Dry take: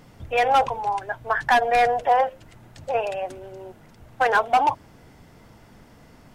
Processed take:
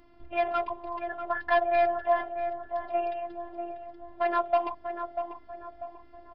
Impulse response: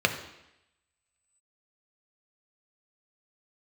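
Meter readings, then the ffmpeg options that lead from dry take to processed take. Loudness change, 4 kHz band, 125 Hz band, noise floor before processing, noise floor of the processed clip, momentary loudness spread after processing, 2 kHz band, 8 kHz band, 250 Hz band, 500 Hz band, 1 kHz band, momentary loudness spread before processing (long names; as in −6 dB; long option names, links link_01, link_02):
−8.0 dB, below −10 dB, below −15 dB, −51 dBFS, −53 dBFS, 17 LU, −9.5 dB, can't be measured, −0.5 dB, −3.0 dB, −8.5 dB, 18 LU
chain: -filter_complex "[0:a]highshelf=frequency=2200:gain=-10,aresample=11025,aresample=44100,afftfilt=real='hypot(re,im)*cos(PI*b)':imag='0':win_size=512:overlap=0.75,asplit=2[link_01][link_02];[link_02]adelay=642,lowpass=frequency=1200:poles=1,volume=-6.5dB,asplit=2[link_03][link_04];[link_04]adelay=642,lowpass=frequency=1200:poles=1,volume=0.48,asplit=2[link_05][link_06];[link_06]adelay=642,lowpass=frequency=1200:poles=1,volume=0.48,asplit=2[link_07][link_08];[link_08]adelay=642,lowpass=frequency=1200:poles=1,volume=0.48,asplit=2[link_09][link_10];[link_10]adelay=642,lowpass=frequency=1200:poles=1,volume=0.48,asplit=2[link_11][link_12];[link_12]adelay=642,lowpass=frequency=1200:poles=1,volume=0.48[link_13];[link_03][link_05][link_07][link_09][link_11][link_13]amix=inputs=6:normalize=0[link_14];[link_01][link_14]amix=inputs=2:normalize=0,volume=-2dB"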